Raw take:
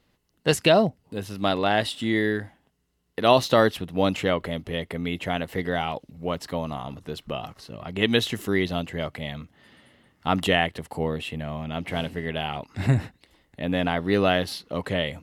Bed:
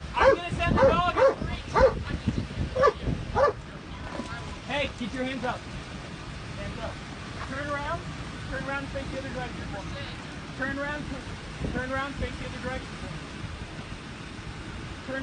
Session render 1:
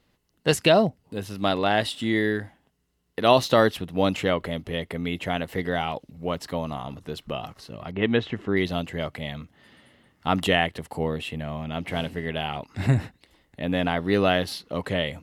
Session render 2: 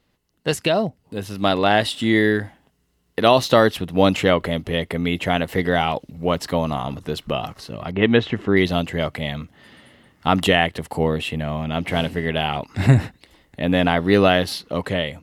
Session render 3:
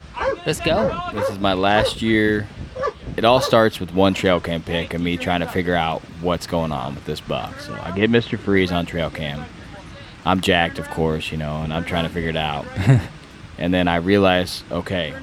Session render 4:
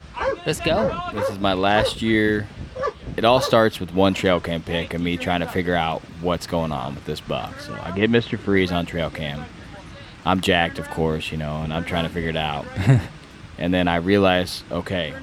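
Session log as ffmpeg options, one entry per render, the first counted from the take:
-filter_complex "[0:a]asettb=1/sr,asplit=3[a][b][c];[a]atrim=end=7.914[d];[b]atrim=start=7.91:end=8.57,asetpts=PTS-STARTPTS,afade=t=in:d=0.004:c=qsin,afade=t=out:st=0.656:d=0.004:c=qsin,lowpass=2.1k[e];[c]atrim=start=8.566[f];[d][e]acrossfade=d=0.004:c1=hsin:c2=qsin[g];[g][f]acrossfade=d=0.004:c1=qsin:c2=hsin"
-af "alimiter=limit=-8dB:level=0:latency=1:release=344,dynaudnorm=f=860:g=3:m=11.5dB"
-filter_complex "[1:a]volume=-2.5dB[a];[0:a][a]amix=inputs=2:normalize=0"
-af "volume=-1.5dB"

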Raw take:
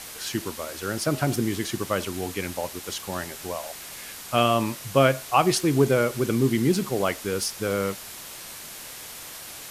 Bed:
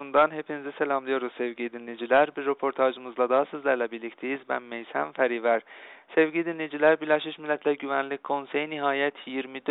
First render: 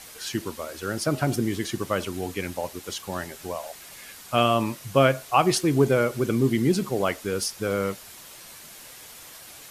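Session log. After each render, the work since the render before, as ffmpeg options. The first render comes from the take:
-af "afftdn=nr=6:nf=-40"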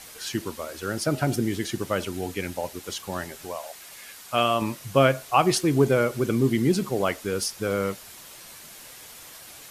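-filter_complex "[0:a]asettb=1/sr,asplit=3[a][b][c];[a]atrim=end=1.014[d];[b]atrim=start=1.01:end=2.76,asetpts=PTS-STARTPTS,afade=t=in:d=0.004:c=qsin,afade=t=out:st=1.746:d=0.004:c=qsin,bandreject=f=1.1k:w=9.5[e];[c]atrim=start=2.756[f];[d][e]acrossfade=d=0.004:c1=hsin:c2=qsin[g];[g][f]acrossfade=d=0.004:c1=qsin:c2=hsin,asettb=1/sr,asplit=3[h][i][j];[h]atrim=end=3.454[k];[i]atrim=start=3.45:end=4.62,asetpts=PTS-STARTPTS,afade=t=in:d=0.004:c=qsin,afade=t=out:st=1.166:d=0.004:c=qsin,lowshelf=f=330:g=-7.5[l];[j]atrim=start=4.616[m];[k][l]acrossfade=d=0.004:c1=hsin:c2=qsin[n];[n][m]acrossfade=d=0.004:c1=qsin:c2=hsin"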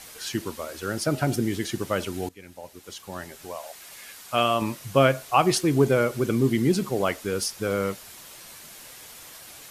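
-filter_complex "[0:a]asplit=2[a][b];[a]atrim=end=2.29,asetpts=PTS-STARTPTS,afade=t=out:st=2.286:d=0.004:c=hsin:silence=0.105925[c];[b]atrim=start=2.29,asetpts=PTS-STARTPTS,afade=t=in:d=1.63:silence=0.105925[d];[c][d]concat=n=2:v=0:a=1"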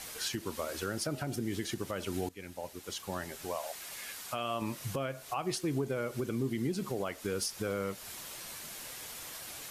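-af "acompressor=threshold=-31dB:ratio=2.5,alimiter=limit=-23.5dB:level=0:latency=1:release=219"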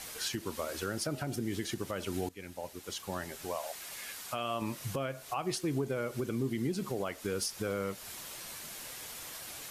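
-af anull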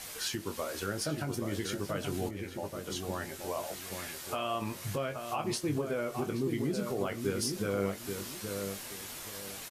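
-filter_complex "[0:a]asplit=2[a][b];[b]adelay=20,volume=-7dB[c];[a][c]amix=inputs=2:normalize=0,asplit=2[d][e];[e]adelay=828,lowpass=f=1.4k:p=1,volume=-5dB,asplit=2[f][g];[g]adelay=828,lowpass=f=1.4k:p=1,volume=0.29,asplit=2[h][i];[i]adelay=828,lowpass=f=1.4k:p=1,volume=0.29,asplit=2[j][k];[k]adelay=828,lowpass=f=1.4k:p=1,volume=0.29[l];[d][f][h][j][l]amix=inputs=5:normalize=0"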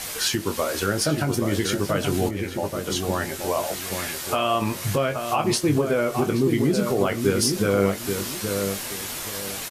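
-af "volume=11.5dB"

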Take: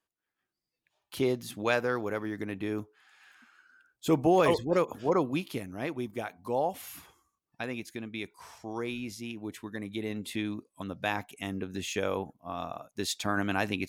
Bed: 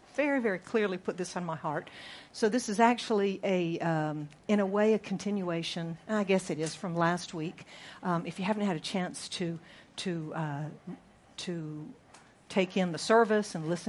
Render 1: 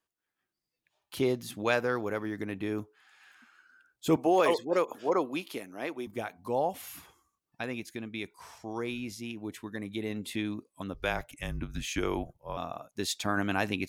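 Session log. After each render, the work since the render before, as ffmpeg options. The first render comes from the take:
-filter_complex "[0:a]asettb=1/sr,asplit=3[a][b][c];[a]atrim=end=4.164[d];[b]atrim=start=4.16:end=6.07,asetpts=PTS-STARTPTS,afade=t=in:d=0.004:c=qsin,afade=t=out:st=1.906:d=0.004:c=qsin,highpass=310[e];[c]atrim=start=6.066[f];[d][e]acrossfade=d=0.004:c1=hsin:c2=qsin[g];[g][f]acrossfade=d=0.004:c1=qsin:c2=hsin,asettb=1/sr,asplit=3[h][i][j];[h]atrim=end=10.944[k];[i]atrim=start=10.94:end=12.57,asetpts=PTS-STARTPTS,afade=t=in:d=0.004:c=qsin,afade=t=out:st=1.626:d=0.004:c=qsin,afreqshift=-130[l];[j]atrim=start=12.566[m];[k][l]acrossfade=d=0.004:c1=hsin:c2=qsin[n];[n][m]acrossfade=d=0.004:c1=qsin:c2=hsin"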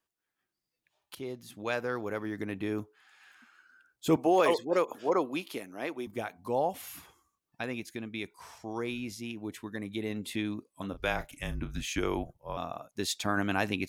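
-filter_complex "[0:a]asettb=1/sr,asplit=3[a][b][c];[a]atrim=end=10.734[d];[b]atrim=start=10.73:end=11.81,asetpts=PTS-STARTPTS,afade=t=in:d=0.004:c=qsin,afade=t=out:st=1.076:d=0.004:c=qsin,asplit=2[e][f];[f]adelay=35,volume=-11dB[g];[e][g]amix=inputs=2:normalize=0,atrim=end_sample=47628[h];[c]atrim=start=11.806[i];[d][h]acrossfade=d=0.004:c1=hsin:c2=qsin[j];[j][i]acrossfade=d=0.004:c1=qsin:c2=hsin,asplit=2[k][l];[k]atrim=end=1.15,asetpts=PTS-STARTPTS,afade=t=out:st=1.146:d=0.004:c=hsin:silence=0.199526[m];[l]atrim=start=1.15,asetpts=PTS-STARTPTS,afade=t=in:d=1.3:silence=0.199526[n];[m][n]concat=n=2:v=0:a=1"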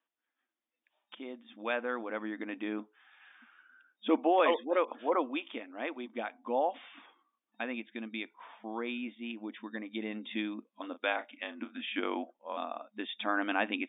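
-af "afftfilt=real='re*between(b*sr/4096,210,3700)':imag='im*between(b*sr/4096,210,3700)':win_size=4096:overlap=0.75,equalizer=f=400:t=o:w=0.26:g=-11"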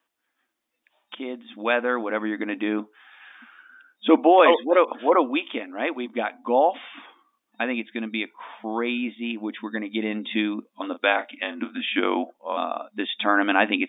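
-af "volume=11dB"

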